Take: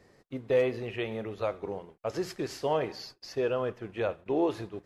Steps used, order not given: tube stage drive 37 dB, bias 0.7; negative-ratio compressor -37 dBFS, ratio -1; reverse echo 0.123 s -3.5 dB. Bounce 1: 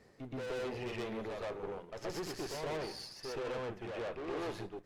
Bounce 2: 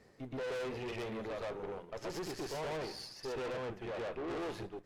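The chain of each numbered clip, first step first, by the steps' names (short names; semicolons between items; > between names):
tube stage > reverse echo > negative-ratio compressor; reverse echo > tube stage > negative-ratio compressor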